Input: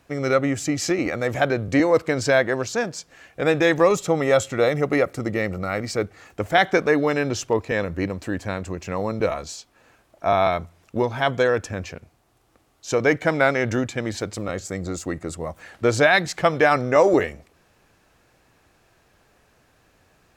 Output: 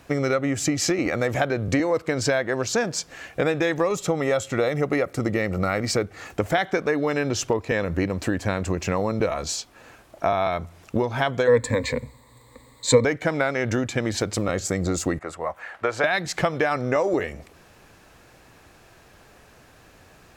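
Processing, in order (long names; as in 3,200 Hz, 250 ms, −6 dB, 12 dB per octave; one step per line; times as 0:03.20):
0:15.19–0:16.04: three-way crossover with the lows and the highs turned down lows −18 dB, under 590 Hz, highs −15 dB, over 2,400 Hz
downward compressor 6 to 1, threshold −28 dBFS, peak gain reduction 15.5 dB
0:11.47–0:13.05: EQ curve with evenly spaced ripples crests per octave 1, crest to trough 18 dB
level +8 dB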